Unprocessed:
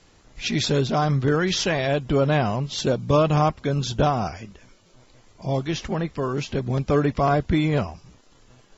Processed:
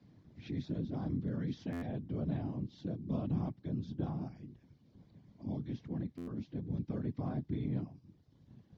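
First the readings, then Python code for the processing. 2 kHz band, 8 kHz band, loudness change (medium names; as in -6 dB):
-28.0 dB, no reading, -16.5 dB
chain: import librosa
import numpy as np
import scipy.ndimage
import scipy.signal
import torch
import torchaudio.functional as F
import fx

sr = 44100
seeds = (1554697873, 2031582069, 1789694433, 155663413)

y = fx.curve_eq(x, sr, hz=(200.0, 330.0, 1300.0), db=(0, -15, -19))
y = fx.whisperise(y, sr, seeds[0])
y = fx.cabinet(y, sr, low_hz=120.0, low_slope=12, high_hz=4900.0, hz=(200.0, 1300.0, 2700.0), db=(-3, -6, -6))
y = fx.buffer_glitch(y, sr, at_s=(1.72, 6.17), block=512, repeats=8)
y = fx.band_squash(y, sr, depth_pct=40)
y = F.gain(torch.from_numpy(y), -8.5).numpy()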